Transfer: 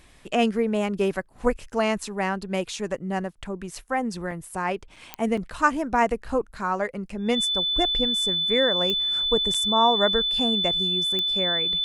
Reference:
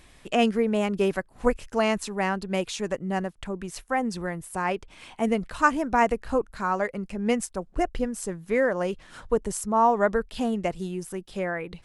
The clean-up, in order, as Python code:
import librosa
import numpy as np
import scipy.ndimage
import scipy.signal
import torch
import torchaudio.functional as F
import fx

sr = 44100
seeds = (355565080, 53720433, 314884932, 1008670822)

y = fx.fix_declick_ar(x, sr, threshold=10.0)
y = fx.notch(y, sr, hz=3500.0, q=30.0)
y = fx.fix_interpolate(y, sr, at_s=(4.31, 4.96, 5.37, 9.54), length_ms=4.6)